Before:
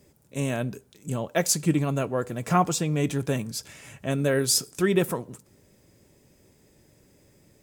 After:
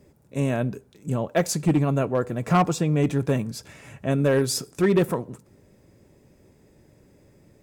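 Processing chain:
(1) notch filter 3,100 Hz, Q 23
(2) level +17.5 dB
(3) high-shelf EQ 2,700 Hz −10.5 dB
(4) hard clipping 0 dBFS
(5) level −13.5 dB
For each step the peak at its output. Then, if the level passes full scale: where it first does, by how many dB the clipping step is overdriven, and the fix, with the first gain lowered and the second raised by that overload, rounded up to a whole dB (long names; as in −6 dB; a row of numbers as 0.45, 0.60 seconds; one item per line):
−9.0, +8.5, +6.5, 0.0, −13.5 dBFS
step 2, 6.5 dB
step 2 +10.5 dB, step 5 −6.5 dB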